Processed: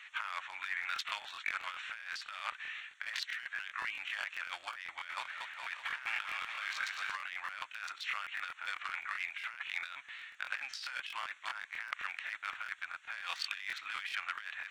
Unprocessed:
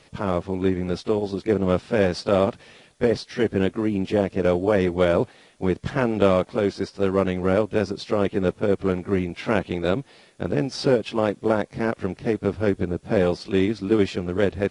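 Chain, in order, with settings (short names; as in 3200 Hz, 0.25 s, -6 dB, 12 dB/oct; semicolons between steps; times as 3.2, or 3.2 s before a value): Wiener smoothing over 9 samples; inverse Chebyshev high-pass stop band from 470 Hz, stop band 60 dB; high shelf 3800 Hz -9.5 dB; negative-ratio compressor -49 dBFS, ratio -1; 4.87–7.15 bouncing-ball echo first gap 0.22 s, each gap 0.9×, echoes 5; crackling interface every 0.13 s, samples 1024, repeat, from 0.81; gain +8 dB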